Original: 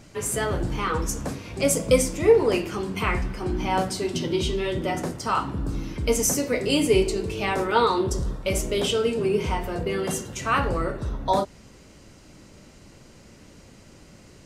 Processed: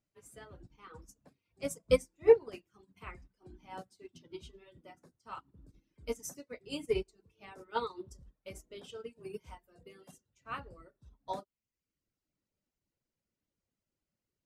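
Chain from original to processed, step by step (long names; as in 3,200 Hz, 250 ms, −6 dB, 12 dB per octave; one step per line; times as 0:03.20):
reverb reduction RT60 0.96 s
0:09.10–0:10.11: high-shelf EQ 7,100 Hz +12 dB
expander for the loud parts 2.5 to 1, over −35 dBFS
level −3.5 dB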